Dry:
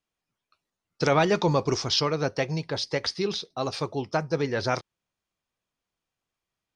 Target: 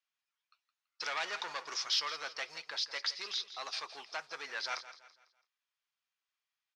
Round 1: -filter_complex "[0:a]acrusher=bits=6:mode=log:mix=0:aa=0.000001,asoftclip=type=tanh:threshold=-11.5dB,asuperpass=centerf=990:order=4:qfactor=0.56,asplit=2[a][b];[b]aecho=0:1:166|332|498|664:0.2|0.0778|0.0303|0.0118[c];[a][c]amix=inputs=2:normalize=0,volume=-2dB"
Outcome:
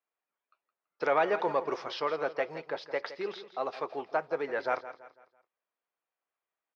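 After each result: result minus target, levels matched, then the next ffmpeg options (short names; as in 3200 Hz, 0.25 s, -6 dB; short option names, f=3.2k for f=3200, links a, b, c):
soft clip: distortion -14 dB; 1000 Hz band +5.5 dB
-filter_complex "[0:a]acrusher=bits=6:mode=log:mix=0:aa=0.000001,asoftclip=type=tanh:threshold=-22.5dB,asuperpass=centerf=990:order=4:qfactor=0.56,asplit=2[a][b];[b]aecho=0:1:166|332|498|664:0.2|0.0778|0.0303|0.0118[c];[a][c]amix=inputs=2:normalize=0,volume=-2dB"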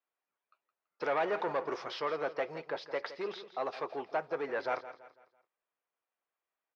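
1000 Hz band +5.0 dB
-filter_complex "[0:a]acrusher=bits=6:mode=log:mix=0:aa=0.000001,asoftclip=type=tanh:threshold=-22.5dB,asuperpass=centerf=2800:order=4:qfactor=0.56,asplit=2[a][b];[b]aecho=0:1:166|332|498|664:0.2|0.0778|0.0303|0.0118[c];[a][c]amix=inputs=2:normalize=0,volume=-2dB"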